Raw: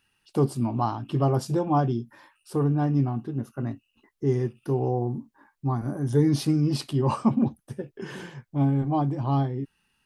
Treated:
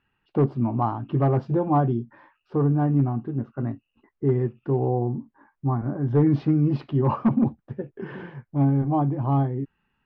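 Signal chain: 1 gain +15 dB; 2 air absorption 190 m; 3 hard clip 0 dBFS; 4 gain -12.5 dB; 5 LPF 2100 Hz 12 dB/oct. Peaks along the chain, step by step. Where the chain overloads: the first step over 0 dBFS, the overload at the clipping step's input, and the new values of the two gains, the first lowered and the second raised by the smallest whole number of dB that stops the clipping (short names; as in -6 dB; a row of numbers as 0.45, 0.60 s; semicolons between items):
+6.0, +5.5, 0.0, -12.5, -12.0 dBFS; step 1, 5.5 dB; step 1 +9 dB, step 4 -6.5 dB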